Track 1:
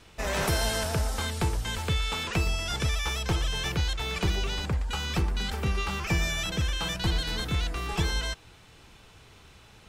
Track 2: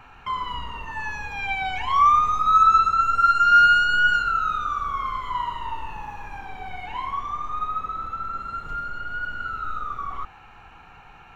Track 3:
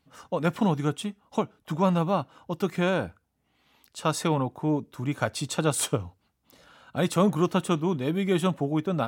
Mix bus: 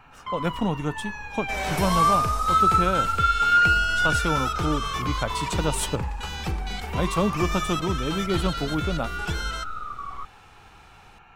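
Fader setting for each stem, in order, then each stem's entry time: -2.0, -4.0, -1.5 dB; 1.30, 0.00, 0.00 s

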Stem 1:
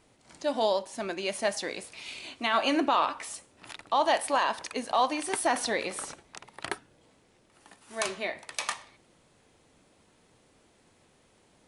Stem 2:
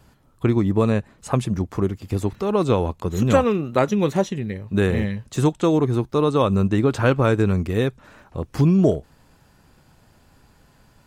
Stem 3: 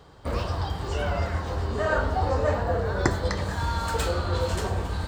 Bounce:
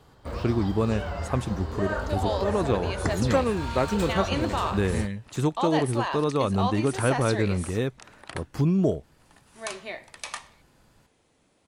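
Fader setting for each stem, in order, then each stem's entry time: -3.5, -6.0, -5.5 dB; 1.65, 0.00, 0.00 s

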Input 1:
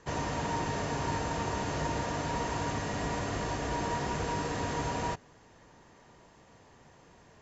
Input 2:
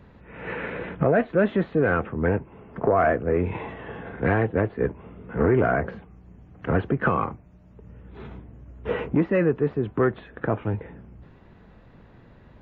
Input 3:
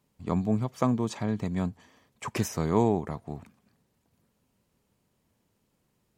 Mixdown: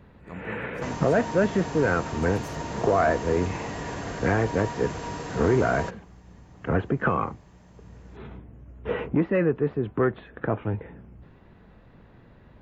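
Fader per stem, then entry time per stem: -1.5, -1.5, -13.0 dB; 0.75, 0.00, 0.00 s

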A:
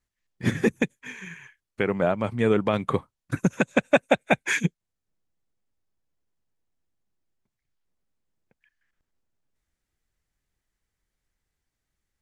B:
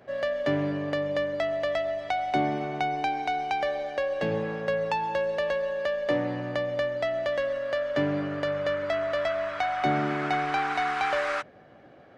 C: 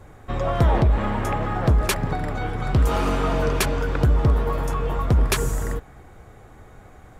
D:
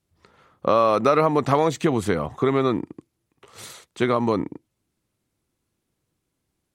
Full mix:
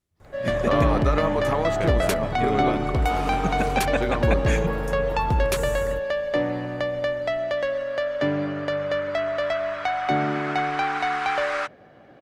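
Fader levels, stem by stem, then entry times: -6.0, +2.5, -5.0, -7.0 dB; 0.00, 0.25, 0.20, 0.00 s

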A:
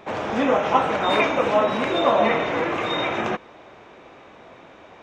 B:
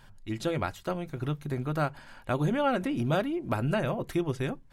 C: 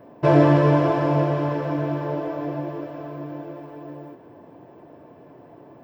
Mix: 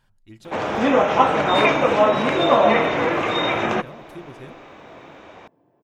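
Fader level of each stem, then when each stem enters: +3.0, -10.5, -16.0 dB; 0.45, 0.00, 1.05 s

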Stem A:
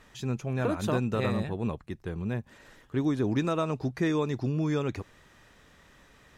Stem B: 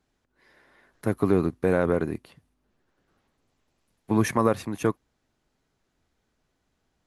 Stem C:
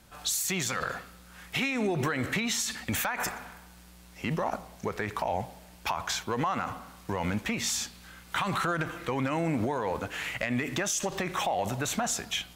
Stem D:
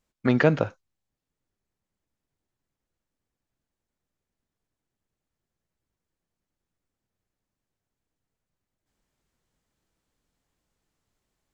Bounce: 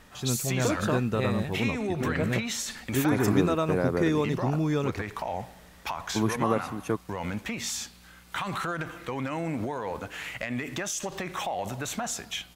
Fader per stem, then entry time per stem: +1.5, -4.5, -2.5, -12.0 dB; 0.00, 2.05, 0.00, 1.75 s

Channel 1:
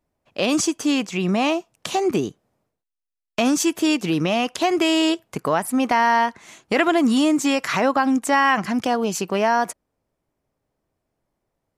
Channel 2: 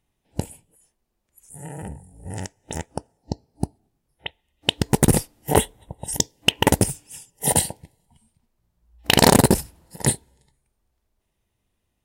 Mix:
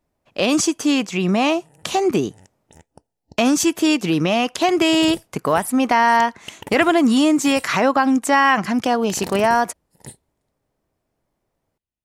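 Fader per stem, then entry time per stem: +2.5, -18.5 dB; 0.00, 0.00 s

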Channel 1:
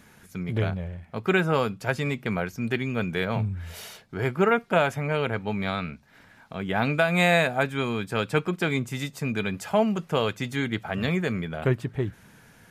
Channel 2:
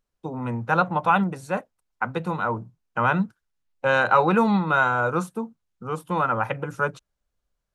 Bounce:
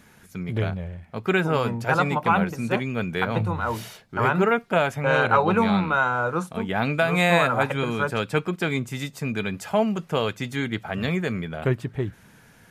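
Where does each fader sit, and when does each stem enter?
+0.5, -1.5 dB; 0.00, 1.20 s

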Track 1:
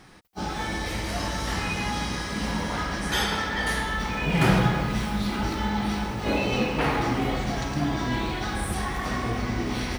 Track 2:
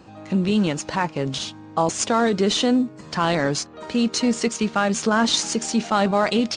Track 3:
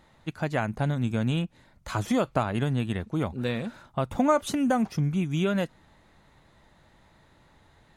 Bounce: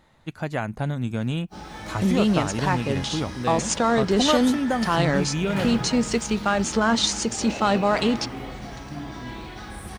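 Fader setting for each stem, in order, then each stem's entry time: -8.5, -1.5, 0.0 dB; 1.15, 1.70, 0.00 s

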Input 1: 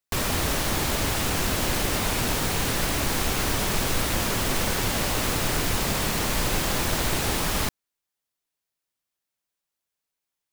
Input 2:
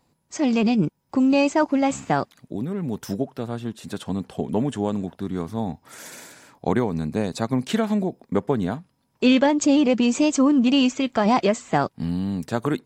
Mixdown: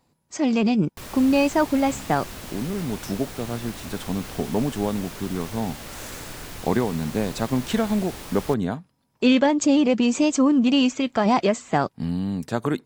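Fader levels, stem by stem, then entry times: -12.5, -0.5 dB; 0.85, 0.00 s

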